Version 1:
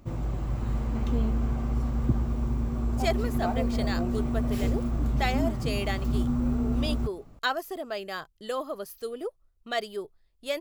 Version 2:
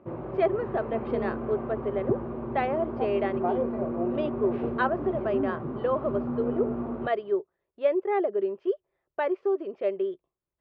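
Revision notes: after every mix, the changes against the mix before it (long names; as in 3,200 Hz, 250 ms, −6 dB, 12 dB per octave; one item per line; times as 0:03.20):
speech: entry −2.65 s
master: add loudspeaker in its box 180–2,300 Hz, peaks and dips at 250 Hz −3 dB, 380 Hz +10 dB, 570 Hz +7 dB, 1,000 Hz +4 dB, 2,100 Hz −4 dB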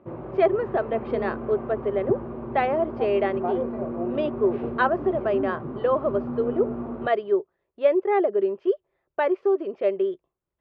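speech +4.5 dB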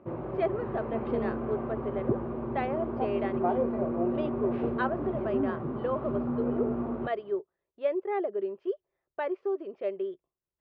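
speech −9.0 dB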